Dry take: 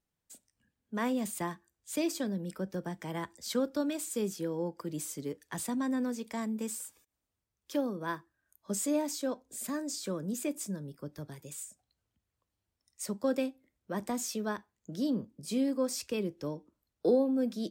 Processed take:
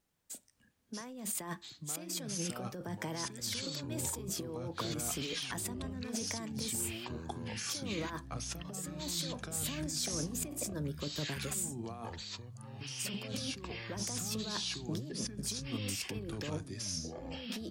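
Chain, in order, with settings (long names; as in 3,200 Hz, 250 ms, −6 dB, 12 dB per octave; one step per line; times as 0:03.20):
low-shelf EQ 170 Hz −3.5 dB
compressor whose output falls as the input rises −42 dBFS, ratio −1
delay with pitch and tempo change per echo 512 ms, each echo −6 semitones, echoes 3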